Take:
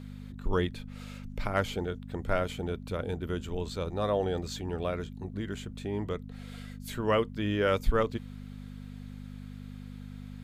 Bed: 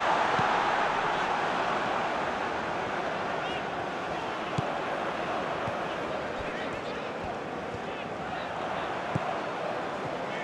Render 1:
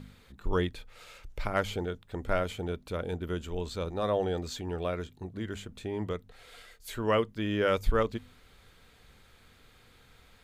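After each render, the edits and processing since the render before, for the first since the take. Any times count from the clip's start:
hum removal 50 Hz, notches 5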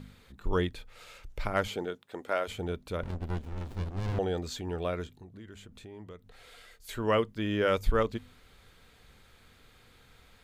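0:01.67–0:02.47: high-pass filter 170 Hz → 450 Hz
0:03.03–0:04.19: windowed peak hold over 65 samples
0:05.19–0:06.89: downward compressor 2.5 to 1, threshold −49 dBFS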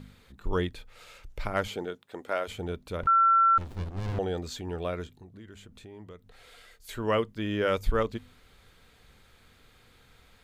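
0:03.07–0:03.58: beep over 1,350 Hz −17.5 dBFS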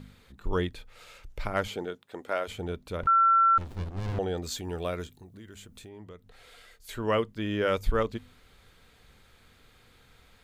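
0:04.43–0:05.89: high-shelf EQ 5,900 Hz +11 dB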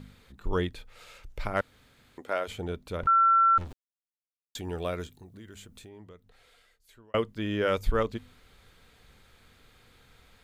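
0:01.61–0:02.18: fill with room tone
0:03.73–0:04.55: silence
0:05.59–0:07.14: fade out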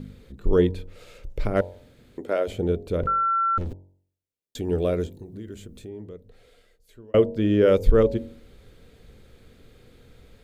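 low shelf with overshoot 670 Hz +9.5 dB, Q 1.5
hum removal 46.37 Hz, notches 21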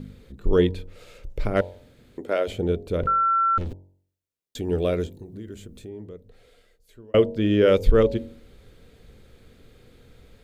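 dynamic equaliser 3,100 Hz, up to +6 dB, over −41 dBFS, Q 0.8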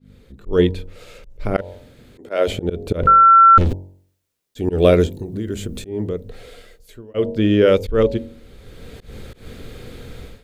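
automatic gain control gain up to 16 dB
volume swells 155 ms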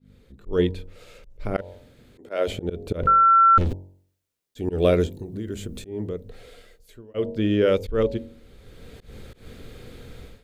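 level −6 dB

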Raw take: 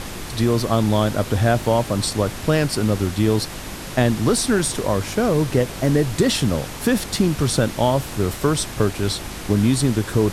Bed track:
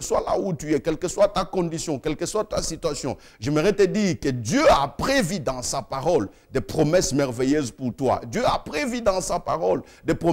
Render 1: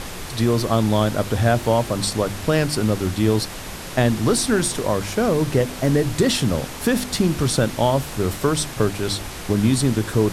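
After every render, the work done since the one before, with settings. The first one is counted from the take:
hum removal 50 Hz, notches 7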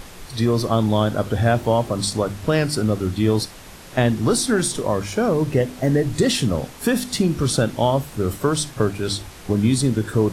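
noise reduction from a noise print 8 dB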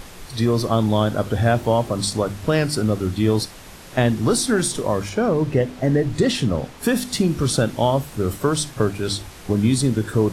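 0:05.09–0:06.83: high-shelf EQ 6,600 Hz −10 dB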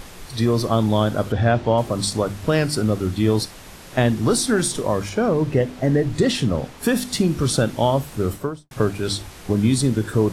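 0:01.32–0:01.78: low-pass filter 4,500 Hz
0:08.24–0:08.71: fade out and dull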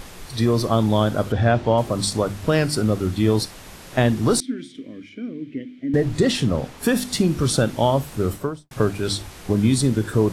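0:04.40–0:05.94: formant filter i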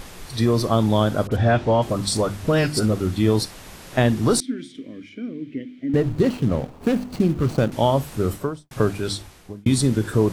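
0:01.27–0:02.93: all-pass dispersion highs, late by 45 ms, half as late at 1,600 Hz
0:05.89–0:07.72: running median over 25 samples
0:08.91–0:09.66: fade out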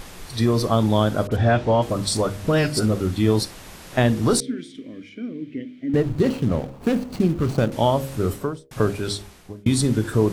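hum removal 67.66 Hz, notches 9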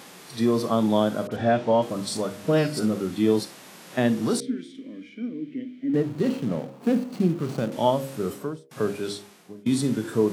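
harmonic and percussive parts rebalanced percussive −9 dB
high-pass filter 160 Hz 24 dB per octave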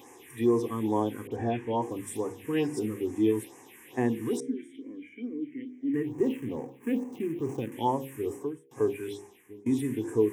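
phaser with its sweep stopped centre 910 Hz, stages 8
all-pass phaser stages 4, 2.3 Hz, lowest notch 660–3,500 Hz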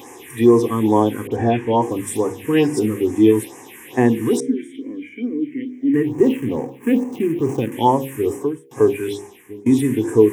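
level +12 dB

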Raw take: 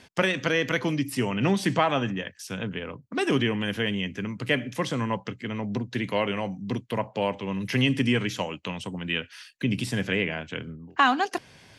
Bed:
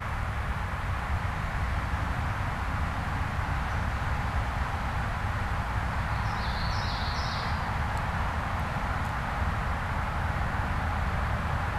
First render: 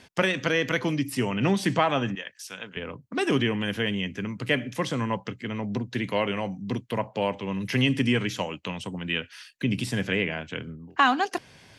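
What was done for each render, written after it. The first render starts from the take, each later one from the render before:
0:02.15–0:02.77: high-pass filter 1,100 Hz 6 dB per octave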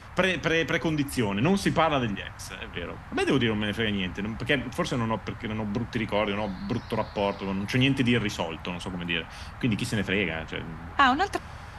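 mix in bed −12.5 dB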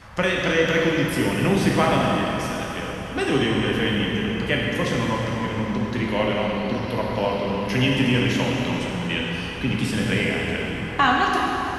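dense smooth reverb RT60 3.8 s, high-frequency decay 0.85×, DRR −3 dB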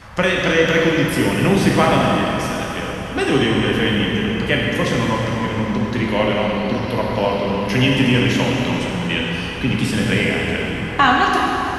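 level +4.5 dB

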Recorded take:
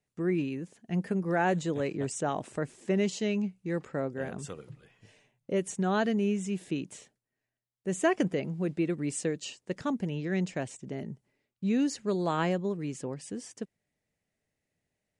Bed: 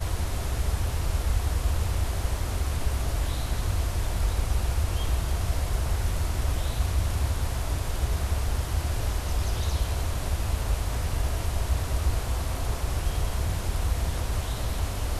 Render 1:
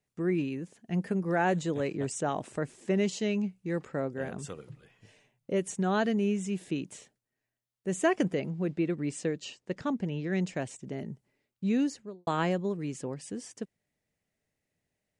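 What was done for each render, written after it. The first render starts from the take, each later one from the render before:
0:08.49–0:10.33: high-frequency loss of the air 61 metres
0:11.75–0:12.27: fade out and dull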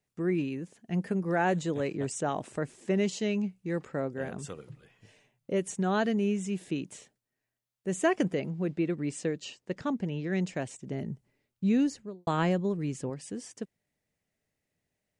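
0:10.89–0:13.10: low-shelf EQ 130 Hz +9.5 dB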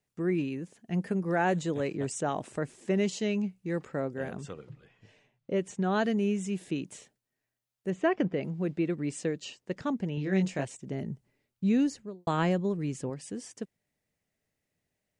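0:04.38–0:05.96: high-frequency loss of the air 85 metres
0:07.90–0:08.41: high-frequency loss of the air 230 metres
0:10.15–0:10.65: double-tracking delay 21 ms −4 dB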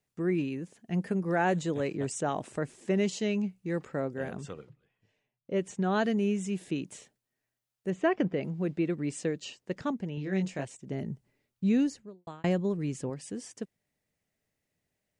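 0:04.61–0:05.57: duck −14 dB, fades 0.13 s
0:09.91–0:10.90: clip gain −3 dB
0:11.78–0:12.44: fade out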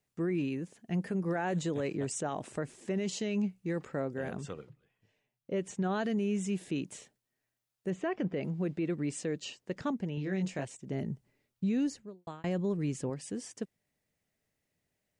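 brickwall limiter −24.5 dBFS, peak gain reduction 9.5 dB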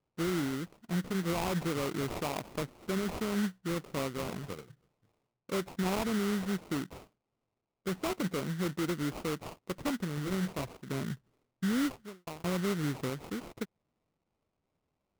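sample-rate reduction 1,700 Hz, jitter 20%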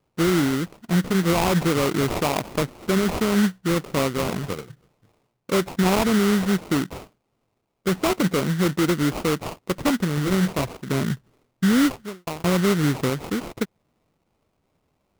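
level +12 dB

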